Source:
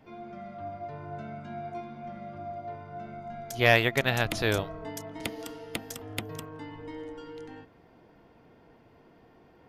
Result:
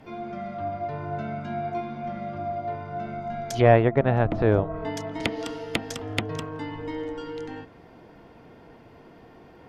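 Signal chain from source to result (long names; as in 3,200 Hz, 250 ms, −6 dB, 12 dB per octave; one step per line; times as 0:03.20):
treble cut that deepens with the level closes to 860 Hz, closed at −26 dBFS
level +8 dB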